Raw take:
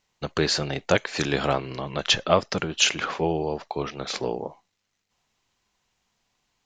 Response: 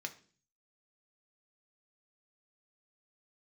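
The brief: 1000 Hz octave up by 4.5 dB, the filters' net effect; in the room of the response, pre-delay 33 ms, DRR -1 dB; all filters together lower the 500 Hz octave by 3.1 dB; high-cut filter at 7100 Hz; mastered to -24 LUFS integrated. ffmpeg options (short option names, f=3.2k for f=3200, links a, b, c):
-filter_complex "[0:a]lowpass=7.1k,equalizer=f=500:t=o:g=-6.5,equalizer=f=1k:t=o:g=8,asplit=2[a][b];[1:a]atrim=start_sample=2205,adelay=33[c];[b][c]afir=irnorm=-1:irlink=0,volume=1.5dB[d];[a][d]amix=inputs=2:normalize=0,volume=-2dB"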